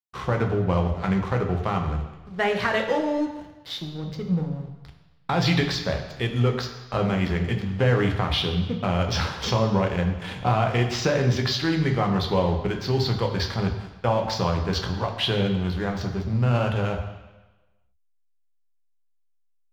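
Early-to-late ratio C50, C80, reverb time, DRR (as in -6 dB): 7.0 dB, 9.0 dB, 1.1 s, 2.5 dB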